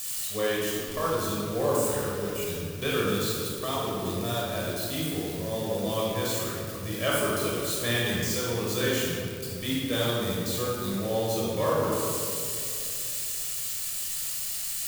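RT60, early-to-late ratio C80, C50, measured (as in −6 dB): 2.6 s, 0.0 dB, −2.0 dB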